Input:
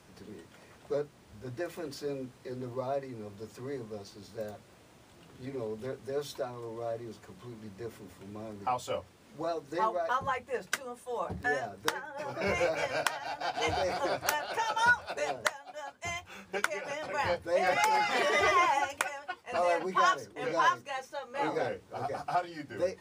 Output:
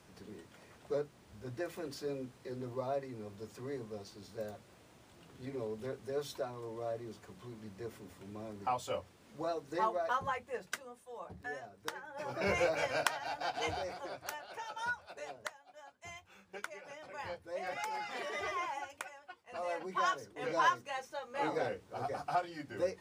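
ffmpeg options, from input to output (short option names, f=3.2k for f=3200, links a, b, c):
-af "volume=16.5dB,afade=t=out:st=10.1:d=1.02:silence=0.354813,afade=t=in:st=11.83:d=0.51:silence=0.316228,afade=t=out:st=13.37:d=0.6:silence=0.298538,afade=t=in:st=19.51:d=1.13:silence=0.334965"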